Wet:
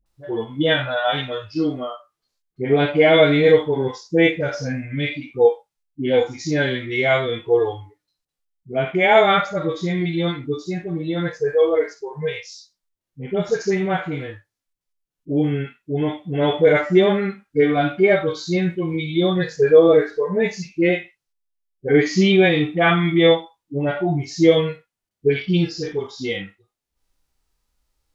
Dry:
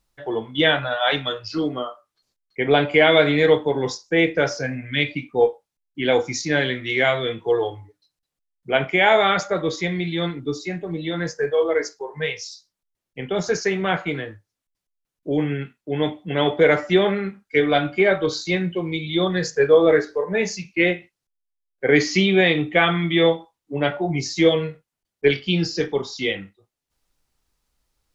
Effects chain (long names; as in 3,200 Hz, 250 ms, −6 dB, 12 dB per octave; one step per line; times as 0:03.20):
harmonic and percussive parts rebalanced percussive −17 dB
all-pass dispersion highs, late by 60 ms, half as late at 610 Hz
level +3.5 dB